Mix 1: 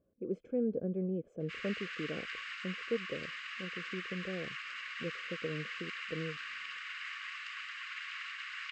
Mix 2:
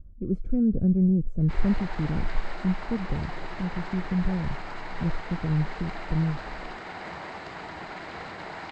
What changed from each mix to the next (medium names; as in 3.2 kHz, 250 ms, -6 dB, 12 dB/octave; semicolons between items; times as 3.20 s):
background: remove Chebyshev high-pass 1.1 kHz, order 10; master: remove cabinet simulation 460–8000 Hz, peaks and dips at 490 Hz +8 dB, 760 Hz -5 dB, 1.3 kHz -7 dB, 2.8 kHz +9 dB, 4.2 kHz -6 dB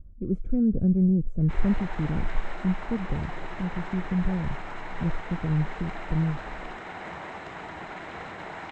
master: add peaking EQ 4.6 kHz -14 dB 0.27 oct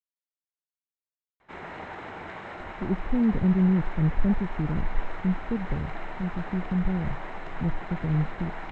speech: entry +2.60 s; master: add treble shelf 5.5 kHz -10.5 dB